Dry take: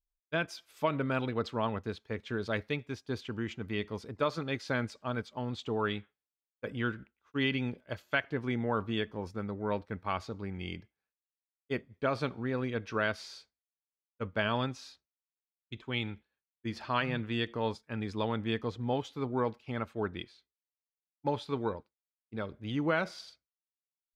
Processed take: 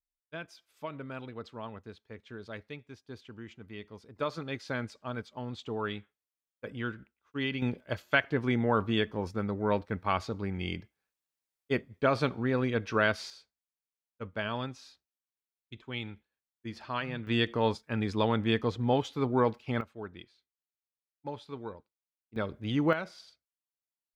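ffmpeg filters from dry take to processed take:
ffmpeg -i in.wav -af "asetnsamples=nb_out_samples=441:pad=0,asendcmd='4.16 volume volume -2.5dB;7.62 volume volume 4.5dB;13.3 volume volume -3.5dB;17.27 volume volume 5dB;19.81 volume volume -7.5dB;22.36 volume volume 4dB;22.93 volume volume -5dB',volume=-9.5dB" out.wav

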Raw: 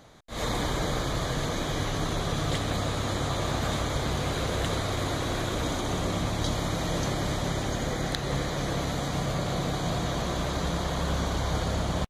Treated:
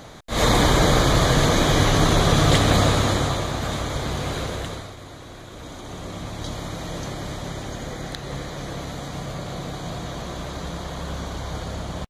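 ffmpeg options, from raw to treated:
ffmpeg -i in.wav -af "volume=20dB,afade=type=out:start_time=2.83:duration=0.65:silence=0.334965,afade=type=out:start_time=4.37:duration=0.58:silence=0.223872,afade=type=in:start_time=5.47:duration=1.08:silence=0.375837" out.wav

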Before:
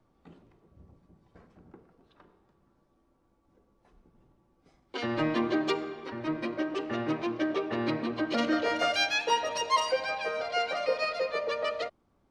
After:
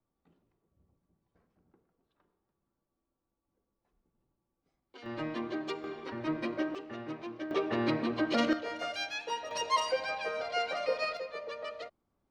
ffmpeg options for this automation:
ffmpeg -i in.wav -af "asetnsamples=nb_out_samples=441:pad=0,asendcmd='5.06 volume volume -8.5dB;5.84 volume volume -1.5dB;6.75 volume volume -10dB;7.51 volume volume 0dB;8.53 volume volume -9.5dB;9.51 volume volume -3dB;11.17 volume volume -9.5dB',volume=-16dB" out.wav

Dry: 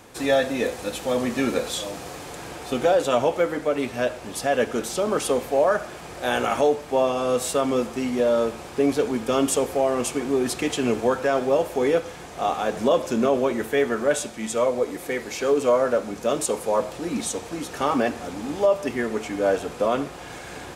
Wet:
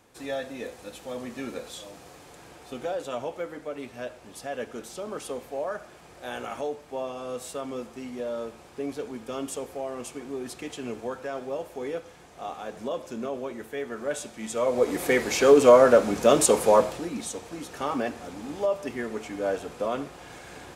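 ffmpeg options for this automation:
ffmpeg -i in.wav -af "volume=5dB,afade=type=in:start_time=13.84:duration=0.79:silence=0.421697,afade=type=in:start_time=14.63:duration=0.4:silence=0.334965,afade=type=out:start_time=16.69:duration=0.42:silence=0.266073" out.wav

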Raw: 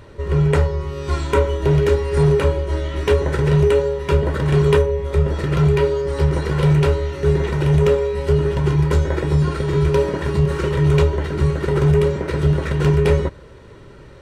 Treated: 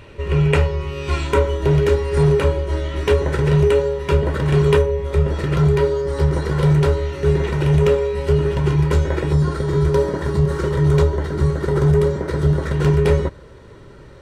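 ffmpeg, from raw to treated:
ffmpeg -i in.wav -af "asetnsamples=nb_out_samples=441:pad=0,asendcmd='1.29 equalizer g 1;5.57 equalizer g -5.5;6.97 equalizer g 1.5;9.33 equalizer g -10.5;12.72 equalizer g -3',equalizer=frequency=2600:width_type=o:width=0.47:gain=11.5" out.wav

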